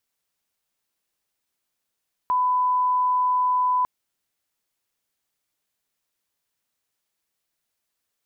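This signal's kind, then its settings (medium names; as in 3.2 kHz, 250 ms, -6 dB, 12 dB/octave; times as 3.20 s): line-up tone -18 dBFS 1.55 s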